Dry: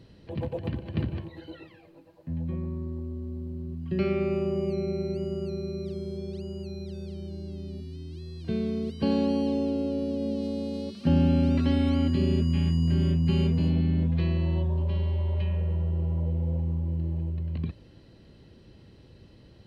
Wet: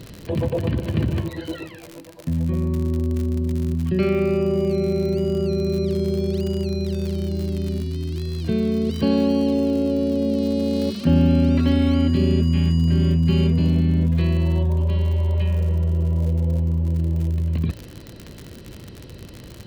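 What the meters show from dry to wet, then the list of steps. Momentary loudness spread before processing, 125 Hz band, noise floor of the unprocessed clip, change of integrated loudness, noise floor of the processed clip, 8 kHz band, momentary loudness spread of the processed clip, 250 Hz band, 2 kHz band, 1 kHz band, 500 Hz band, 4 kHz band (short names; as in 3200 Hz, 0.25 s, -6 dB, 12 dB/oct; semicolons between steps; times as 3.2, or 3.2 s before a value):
14 LU, +7.0 dB, -54 dBFS, +7.0 dB, -41 dBFS, n/a, 16 LU, +7.0 dB, +7.5 dB, +5.0 dB, +8.0 dB, +7.5 dB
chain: crackle 86/s -39 dBFS; notch 810 Hz, Q 17; in parallel at -2.5 dB: negative-ratio compressor -34 dBFS; on the sum: gain +5 dB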